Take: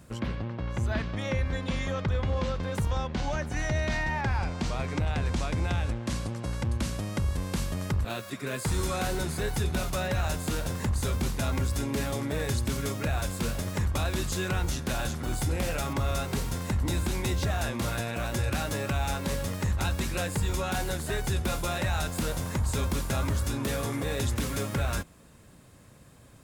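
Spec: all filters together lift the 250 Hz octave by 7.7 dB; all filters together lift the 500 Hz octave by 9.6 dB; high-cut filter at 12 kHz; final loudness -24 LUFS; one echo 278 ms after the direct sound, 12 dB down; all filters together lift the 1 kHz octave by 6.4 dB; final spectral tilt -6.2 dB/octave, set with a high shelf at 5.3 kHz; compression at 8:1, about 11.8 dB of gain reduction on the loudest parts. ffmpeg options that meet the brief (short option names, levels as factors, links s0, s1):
-af "lowpass=12000,equalizer=f=250:t=o:g=7.5,equalizer=f=500:t=o:g=8.5,equalizer=f=1000:t=o:g=5,highshelf=f=5300:g=-5,acompressor=threshold=0.0251:ratio=8,aecho=1:1:278:0.251,volume=3.98"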